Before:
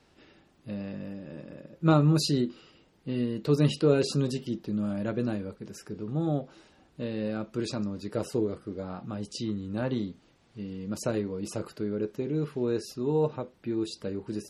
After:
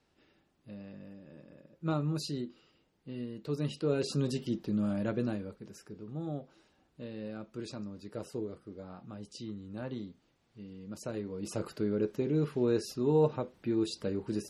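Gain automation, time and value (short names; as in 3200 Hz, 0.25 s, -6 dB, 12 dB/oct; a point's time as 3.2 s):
3.68 s -10.5 dB
4.44 s -1 dB
4.96 s -1 dB
6.06 s -9.5 dB
11.08 s -9.5 dB
11.68 s 0 dB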